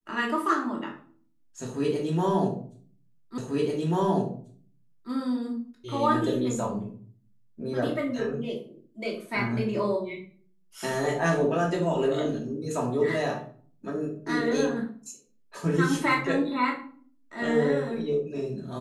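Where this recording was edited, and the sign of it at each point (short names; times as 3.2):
3.38 repeat of the last 1.74 s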